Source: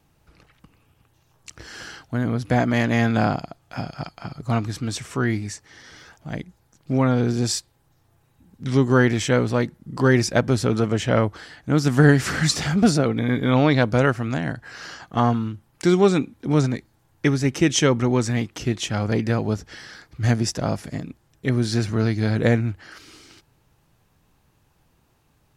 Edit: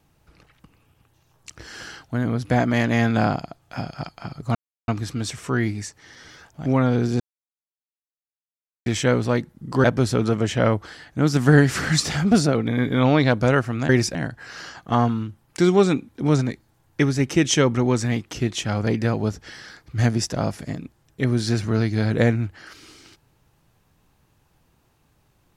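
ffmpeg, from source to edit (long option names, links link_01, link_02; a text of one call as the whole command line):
ffmpeg -i in.wav -filter_complex "[0:a]asplit=8[link_01][link_02][link_03][link_04][link_05][link_06][link_07][link_08];[link_01]atrim=end=4.55,asetpts=PTS-STARTPTS,afade=type=out:start_time=4.546:duration=0.004:curve=hsin,apad=pad_dur=0.33[link_09];[link_02]atrim=start=4.55:end=6.332,asetpts=PTS-STARTPTS,afade=type=in:duration=0.004:curve=hsin[link_10];[link_03]atrim=start=6.908:end=7.45,asetpts=PTS-STARTPTS,afade=type=out:start_time=0.538:duration=0.004:curve=hsin[link_11];[link_04]atrim=start=7.45:end=9.11,asetpts=PTS-STARTPTS,volume=0[link_12];[link_05]atrim=start=9.11:end=10.092,asetpts=PTS-STARTPTS,afade=type=in:duration=0.004:curve=hsin[link_13];[link_06]atrim=start=10.348:end=14.402[link_14];[link_07]atrim=start=10.088:end=10.352[link_15];[link_08]atrim=start=14.398[link_16];[link_09][link_10]concat=n=2:v=0:a=1[link_17];[link_11][link_12][link_13]concat=n=3:v=0:a=1[link_18];[link_17][link_18]acrossfade=duration=0.004:curve1=hsin:curve2=hsin[link_19];[link_19][link_14]acrossfade=duration=0.004:curve1=hsin:curve2=hsin[link_20];[link_20][link_15]acrossfade=duration=0.004:curve1=hsin:curve2=hsin[link_21];[link_21][link_16]acrossfade=duration=0.004:curve1=hsin:curve2=hsin" out.wav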